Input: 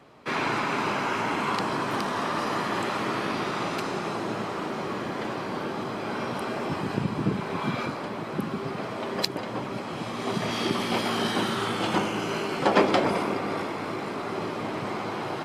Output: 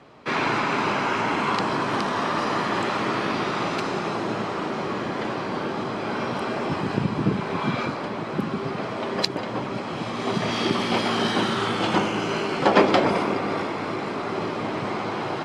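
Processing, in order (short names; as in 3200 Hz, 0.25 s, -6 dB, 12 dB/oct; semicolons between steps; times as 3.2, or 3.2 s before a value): LPF 7100 Hz 12 dB/oct; gain +3.5 dB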